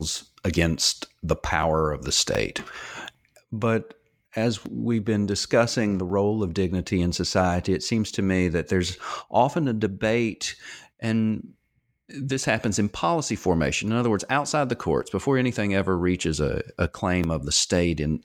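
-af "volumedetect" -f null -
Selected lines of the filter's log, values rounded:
mean_volume: -24.7 dB
max_volume: -5.9 dB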